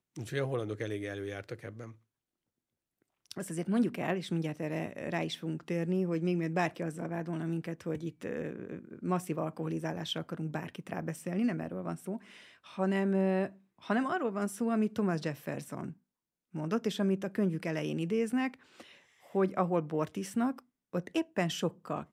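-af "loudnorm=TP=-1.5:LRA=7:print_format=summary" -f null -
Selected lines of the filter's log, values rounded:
Input Integrated:    -34.1 LUFS
Input True Peak:     -14.4 dBTP
Input LRA:             4.4 LU
Input Threshold:     -44.5 LUFS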